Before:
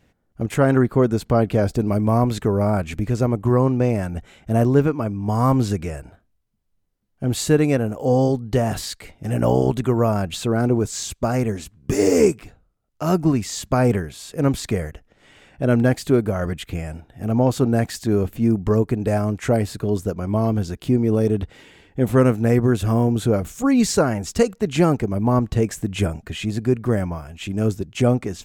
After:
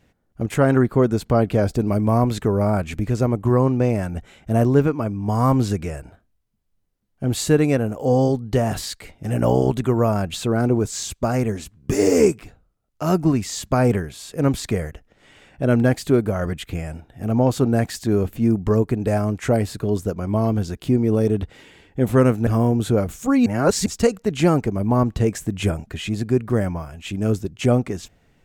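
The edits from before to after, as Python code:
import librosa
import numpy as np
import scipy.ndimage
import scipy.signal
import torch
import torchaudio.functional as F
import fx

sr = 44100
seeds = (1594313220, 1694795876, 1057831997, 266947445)

y = fx.edit(x, sr, fx.cut(start_s=22.47, length_s=0.36),
    fx.reverse_span(start_s=23.82, length_s=0.4), tone=tone)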